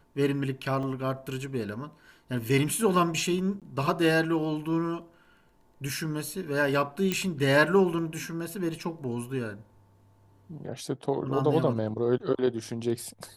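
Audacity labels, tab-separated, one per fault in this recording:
0.830000	0.830000	gap 2.6 ms
3.600000	3.620000	gap 17 ms
7.120000	7.120000	pop -12 dBFS

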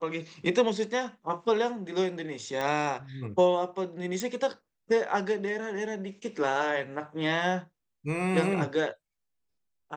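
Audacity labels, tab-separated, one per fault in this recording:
2.610000	2.610000	pop -18 dBFS
4.200000	4.200000	pop

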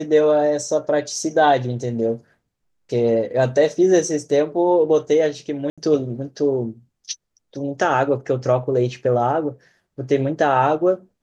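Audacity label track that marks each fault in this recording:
5.700000	5.780000	gap 76 ms

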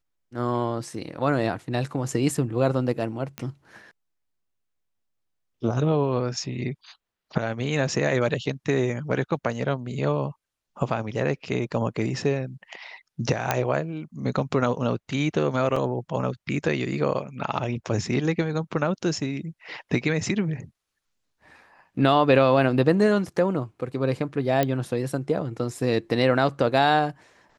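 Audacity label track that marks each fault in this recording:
3.380000	3.380000	pop -16 dBFS
13.510000	13.510000	pop -6 dBFS
15.760000	15.760000	gap 4.3 ms
24.630000	24.630000	pop -9 dBFS

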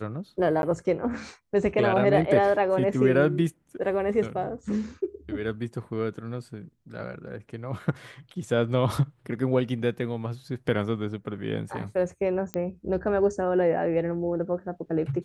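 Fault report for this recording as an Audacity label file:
0.620000	0.630000	gap 11 ms
12.540000	12.540000	pop -16 dBFS

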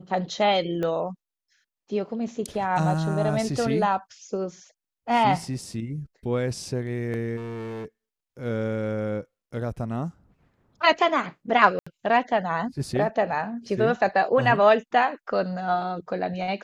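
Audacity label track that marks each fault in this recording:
0.830000	0.830000	pop -18 dBFS
7.360000	7.860000	clipped -31.5 dBFS
11.790000	11.870000	gap 75 ms

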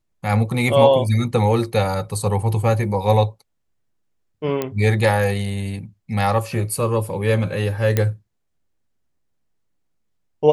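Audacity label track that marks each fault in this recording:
4.620000	4.620000	pop -9 dBFS
7.970000	7.970000	pop -5 dBFS

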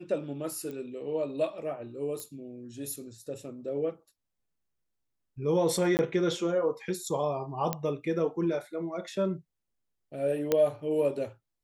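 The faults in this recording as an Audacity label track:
0.710000	0.710000	pop -28 dBFS
2.200000	2.200000	pop -22 dBFS
5.970000	5.990000	gap 19 ms
7.730000	7.730000	pop -13 dBFS
10.520000	10.520000	pop -12 dBFS

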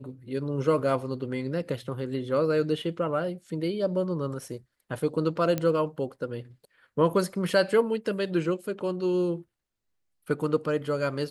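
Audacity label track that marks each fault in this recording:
5.580000	5.580000	pop -14 dBFS

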